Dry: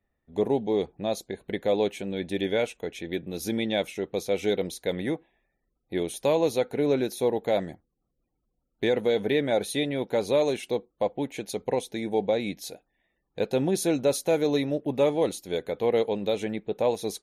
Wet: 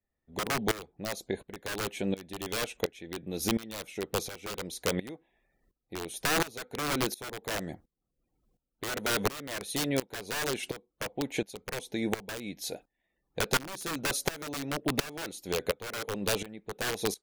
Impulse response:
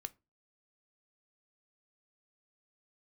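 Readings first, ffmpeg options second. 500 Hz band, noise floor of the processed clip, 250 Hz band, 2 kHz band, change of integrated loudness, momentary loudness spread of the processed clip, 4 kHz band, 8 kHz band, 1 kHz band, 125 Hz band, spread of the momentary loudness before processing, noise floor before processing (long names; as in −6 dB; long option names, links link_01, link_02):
−11.0 dB, −84 dBFS, −6.5 dB, +2.5 dB, −6.0 dB, 10 LU, +0.5 dB, +3.0 dB, −2.0 dB, −3.5 dB, 9 LU, −79 dBFS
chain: -af "aeval=exprs='(mod(9.44*val(0)+1,2)-1)/9.44':channel_layout=same,acompressor=threshold=-33dB:ratio=2.5,aeval=exprs='val(0)*pow(10,-19*if(lt(mod(-1.4*n/s,1),2*abs(-1.4)/1000),1-mod(-1.4*n/s,1)/(2*abs(-1.4)/1000),(mod(-1.4*n/s,1)-2*abs(-1.4)/1000)/(1-2*abs(-1.4)/1000))/20)':channel_layout=same,volume=7.5dB"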